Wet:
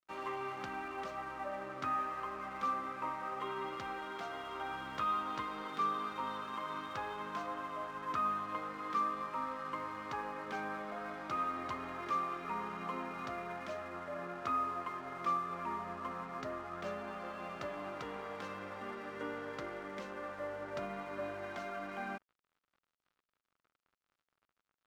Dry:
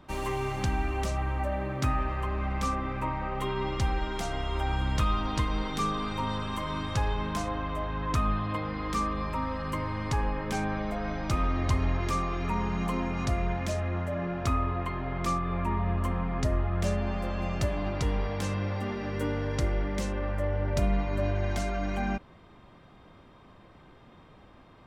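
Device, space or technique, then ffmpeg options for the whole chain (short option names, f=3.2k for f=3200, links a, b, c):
pocket radio on a weak battery: -af "highpass=300,lowpass=3.4k,aeval=exprs='sgn(val(0))*max(abs(val(0))-0.00299,0)':c=same,equalizer=f=1.3k:t=o:w=0.51:g=8,volume=-7.5dB"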